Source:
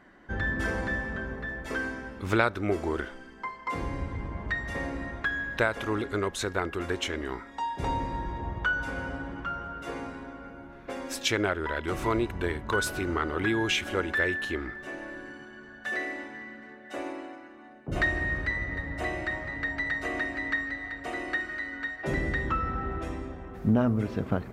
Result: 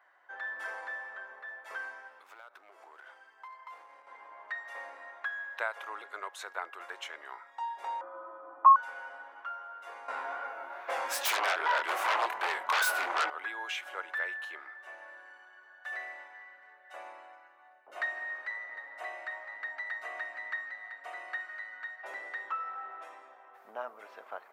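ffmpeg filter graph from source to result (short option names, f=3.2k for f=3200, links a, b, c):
-filter_complex "[0:a]asettb=1/sr,asplit=3[a][b][c];[a]atrim=end=2.074[d];[b]atrim=start=2.07:end=4.07,asetpts=PTS-STARTPTS,afade=t=in:d=0.004:c=qsin,afade=t=out:st=1.996:d=0.004:c=qsin,acompressor=threshold=-36dB:ratio=8:attack=3.2:release=140:knee=1:detection=peak,aeval=exprs='clip(val(0),-1,0.0133)':c=same[e];[c]atrim=start=4.066[f];[d][e]acrossfade=d=0.004:c1=hsin:c2=qsin[g];[g][f]acrossfade=d=0.004:c1=qsin:c2=hsin,asettb=1/sr,asplit=3[h][i][j];[h]atrim=end=8.014[k];[i]atrim=start=8.01:end=8.76,asetpts=PTS-STARTPTS,afade=t=in:d=0.004:c=qsin,afade=t=out:st=0.746:d=0.004:c=qsin,afreqshift=-390,lowpass=f=1.1k:t=q:w=5.1[l];[j]atrim=start=8.756[m];[k][l]acrossfade=d=0.004:c1=hsin:c2=qsin[n];[n][m]acrossfade=d=0.004:c1=qsin:c2=hsin,asettb=1/sr,asplit=3[o][p][q];[o]atrim=end=10.084[r];[p]atrim=start=10.08:end=13.3,asetpts=PTS-STARTPTS,afade=t=in:d=0.004:c=qsin,afade=t=out:st=3.216:d=0.004:c=qsin,flanger=delay=19:depth=7.1:speed=2.5,aeval=exprs='0.158*sin(PI/2*5.01*val(0)/0.158)':c=same[s];[q]atrim=start=13.296[t];[r][s]acrossfade=d=0.004:c1=hsin:c2=qsin[u];[u][t]acrossfade=d=0.004:c1=qsin:c2=hsin,highpass=f=740:w=0.5412,highpass=f=740:w=1.3066,equalizer=f=6k:w=0.31:g=-11,volume=-1.5dB"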